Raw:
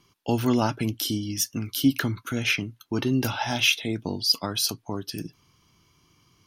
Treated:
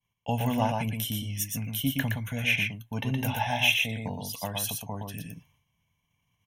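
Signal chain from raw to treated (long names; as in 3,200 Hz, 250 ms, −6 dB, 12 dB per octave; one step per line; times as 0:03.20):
downward expander −53 dBFS
phaser with its sweep stopped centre 1,300 Hz, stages 6
on a send: single-tap delay 118 ms −4 dB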